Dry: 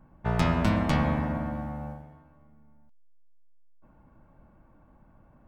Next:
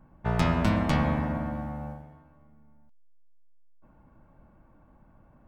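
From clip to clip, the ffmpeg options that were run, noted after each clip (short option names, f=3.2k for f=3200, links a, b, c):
-af anull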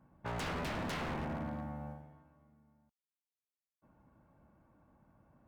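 -af "highpass=64,aeval=exprs='0.0501*(abs(mod(val(0)/0.0501+3,4)-2)-1)':c=same,volume=-7dB"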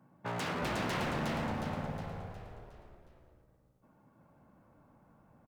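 -filter_complex "[0:a]highpass=f=110:w=0.5412,highpass=f=110:w=1.3066,asplit=2[a][b];[b]asplit=6[c][d][e][f][g][h];[c]adelay=362,afreqshift=-56,volume=-3dB[i];[d]adelay=724,afreqshift=-112,volume=-9.6dB[j];[e]adelay=1086,afreqshift=-168,volume=-16.1dB[k];[f]adelay=1448,afreqshift=-224,volume=-22.7dB[l];[g]adelay=1810,afreqshift=-280,volume=-29.2dB[m];[h]adelay=2172,afreqshift=-336,volume=-35.8dB[n];[i][j][k][l][m][n]amix=inputs=6:normalize=0[o];[a][o]amix=inputs=2:normalize=0,volume=2.5dB"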